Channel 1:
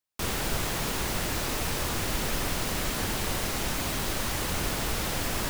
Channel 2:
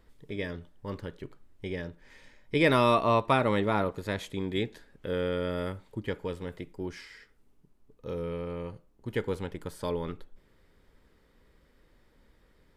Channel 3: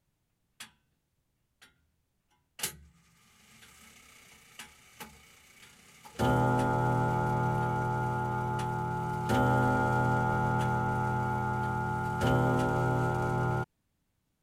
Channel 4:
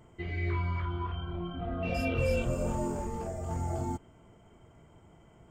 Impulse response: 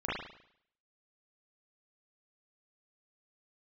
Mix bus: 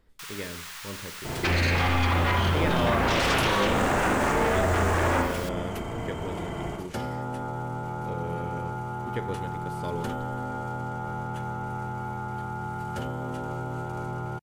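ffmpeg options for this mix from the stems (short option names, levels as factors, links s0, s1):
-filter_complex "[0:a]highpass=f=1100:w=0.5412,highpass=f=1100:w=1.3066,equalizer=f=13000:w=0.48:g=-3.5,volume=0.501[s0];[1:a]volume=0.668,asplit=2[s1][s2];[s2]volume=0.106[s3];[2:a]acompressor=threshold=0.0251:ratio=6,adelay=750,volume=1.33[s4];[3:a]bass=f=250:g=-4,treble=f=4000:g=-4,acompressor=threshold=0.02:ratio=6,aeval=exprs='0.0531*sin(PI/2*5.01*val(0)/0.0531)':c=same,adelay=1250,volume=1.33,asplit=2[s5][s6];[s6]volume=0.631[s7];[4:a]atrim=start_sample=2205[s8];[s3][s7]amix=inputs=2:normalize=0[s9];[s9][s8]afir=irnorm=-1:irlink=0[s10];[s0][s1][s4][s5][s10]amix=inputs=5:normalize=0,acompressor=threshold=0.0708:ratio=2"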